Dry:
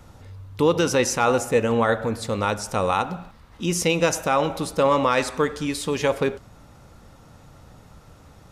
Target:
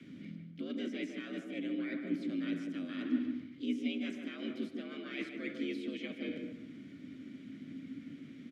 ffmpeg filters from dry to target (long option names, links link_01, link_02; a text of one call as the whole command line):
ffmpeg -i in.wav -filter_complex "[0:a]afreqshift=70,areverse,acompressor=threshold=-32dB:ratio=8,areverse,asplit=2[link_01][link_02];[link_02]asetrate=55563,aresample=44100,atempo=0.793701,volume=-5dB[link_03];[link_01][link_03]amix=inputs=2:normalize=0,acrossover=split=3200[link_04][link_05];[link_05]acompressor=threshold=-46dB:ratio=4:attack=1:release=60[link_06];[link_04][link_06]amix=inputs=2:normalize=0,asplit=3[link_07][link_08][link_09];[link_07]bandpass=frequency=270:width_type=q:width=8,volume=0dB[link_10];[link_08]bandpass=frequency=2290:width_type=q:width=8,volume=-6dB[link_11];[link_09]bandpass=frequency=3010:width_type=q:width=8,volume=-9dB[link_12];[link_10][link_11][link_12]amix=inputs=3:normalize=0,asplit=2[link_13][link_14];[link_14]adelay=150,lowpass=frequency=1400:poles=1,volume=-4dB,asplit=2[link_15][link_16];[link_16]adelay=150,lowpass=frequency=1400:poles=1,volume=0.27,asplit=2[link_17][link_18];[link_18]adelay=150,lowpass=frequency=1400:poles=1,volume=0.27,asplit=2[link_19][link_20];[link_20]adelay=150,lowpass=frequency=1400:poles=1,volume=0.27[link_21];[link_13][link_15][link_17][link_19][link_21]amix=inputs=5:normalize=0,volume=8.5dB" out.wav